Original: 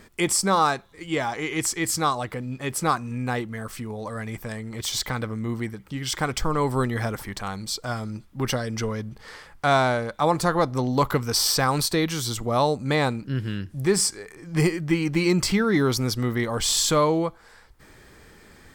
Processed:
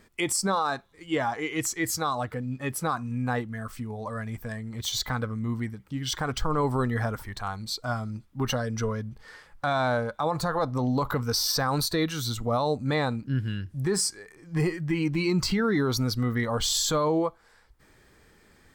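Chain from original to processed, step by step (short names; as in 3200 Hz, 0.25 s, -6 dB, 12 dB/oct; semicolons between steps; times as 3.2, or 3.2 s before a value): spectral noise reduction 8 dB; limiter -17 dBFS, peak gain reduction 8.5 dB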